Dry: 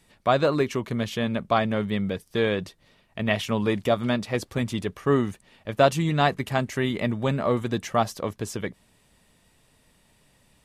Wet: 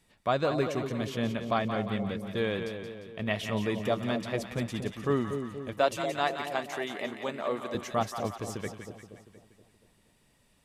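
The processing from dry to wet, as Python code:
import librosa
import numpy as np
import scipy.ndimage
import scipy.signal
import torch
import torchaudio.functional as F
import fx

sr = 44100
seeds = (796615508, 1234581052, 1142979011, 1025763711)

y = fx.highpass(x, sr, hz=360.0, slope=12, at=(5.73, 7.75))
y = fx.echo_split(y, sr, split_hz=740.0, low_ms=237, high_ms=175, feedback_pct=52, wet_db=-7)
y = y * librosa.db_to_amplitude(-6.5)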